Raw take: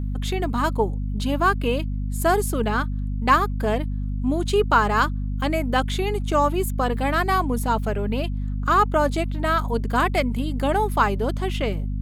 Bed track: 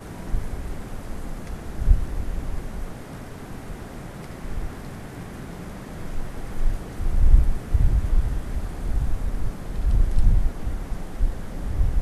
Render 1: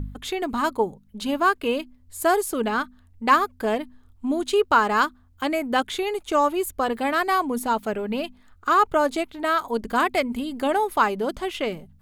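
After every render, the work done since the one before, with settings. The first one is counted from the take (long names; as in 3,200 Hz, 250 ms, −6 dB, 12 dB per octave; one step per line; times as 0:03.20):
hum removal 50 Hz, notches 5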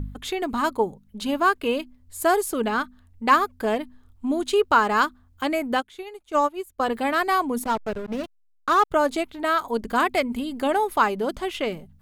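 0:05.75–0:06.80: expander for the loud parts 2.5 to 1, over −29 dBFS
0:07.64–0:08.91: slack as between gear wheels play −23 dBFS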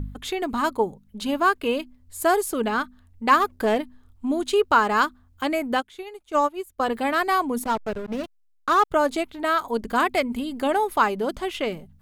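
0:03.40–0:03.81: leveller curve on the samples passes 1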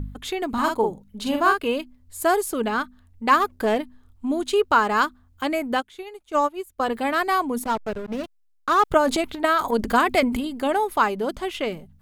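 0:00.49–0:01.59: double-tracking delay 45 ms −4 dB
0:08.79–0:10.48: transient designer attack +6 dB, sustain +10 dB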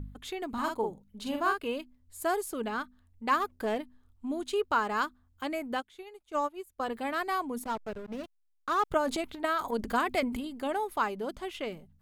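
level −9.5 dB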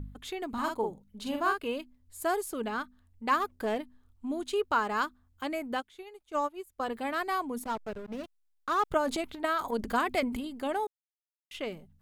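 0:10.87–0:11.51: silence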